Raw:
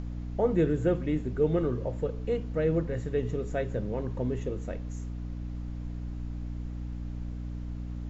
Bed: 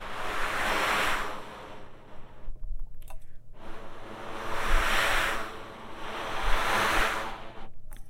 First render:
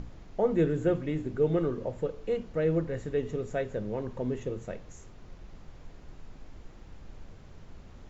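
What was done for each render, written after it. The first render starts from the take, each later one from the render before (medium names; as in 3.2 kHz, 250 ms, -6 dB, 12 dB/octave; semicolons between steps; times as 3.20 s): hum notches 60/120/180/240/300 Hz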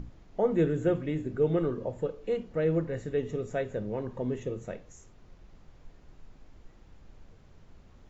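noise print and reduce 6 dB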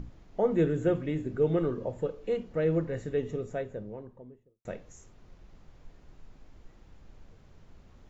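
3.04–4.65 s: studio fade out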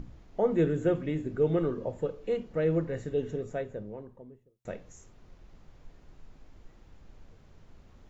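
de-hum 62.15 Hz, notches 3; 3.15–3.40 s: spectral replace 1.1–2.6 kHz before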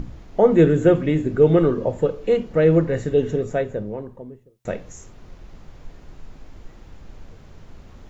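trim +11.5 dB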